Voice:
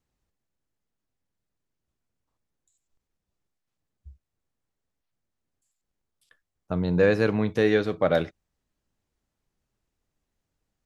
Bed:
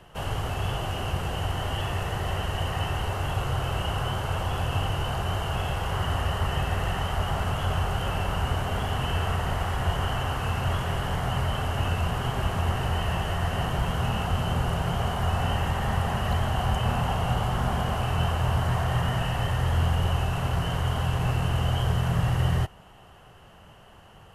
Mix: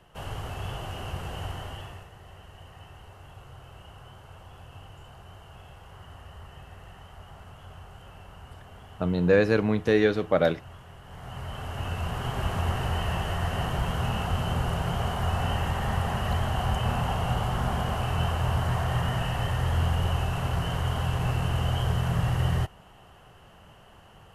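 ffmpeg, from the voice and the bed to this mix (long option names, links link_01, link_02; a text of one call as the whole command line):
ffmpeg -i stem1.wav -i stem2.wav -filter_complex "[0:a]adelay=2300,volume=0dB[link_01];[1:a]volume=12dB,afade=type=out:start_time=1.46:duration=0.63:silence=0.211349,afade=type=in:start_time=11.04:duration=1.49:silence=0.125893[link_02];[link_01][link_02]amix=inputs=2:normalize=0" out.wav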